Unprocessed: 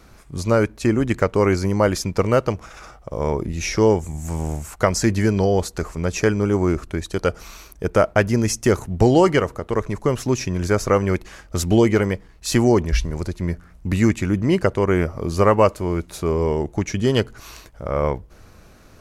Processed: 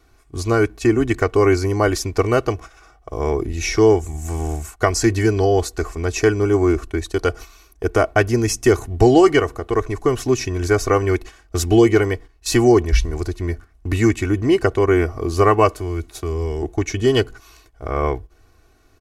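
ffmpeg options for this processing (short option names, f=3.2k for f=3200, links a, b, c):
-filter_complex "[0:a]asettb=1/sr,asplit=3[a][b][c];[a]atrim=end=15.764[d];[b]atrim=start=15.76:end=16.63,asetpts=PTS-STARTPTS,afade=t=in:d=0.004:c=qsin,afade=t=out:st=0.866:d=0.004:c=qsin,acrossover=split=160|3000[e][f][g];[f]acompressor=threshold=-29dB:ratio=3:attack=3.2:release=140:knee=2.83:detection=peak[h];[e][h][g]amix=inputs=3:normalize=0[i];[c]atrim=start=16.626[j];[d][i]acrossfade=d=0.004:c1=hsin:c2=qsin[k];[k][j]acrossfade=d=0.004:c1=qsin:c2=hsin,agate=range=-10dB:threshold=-34dB:ratio=16:detection=peak,aecho=1:1:2.7:0.78"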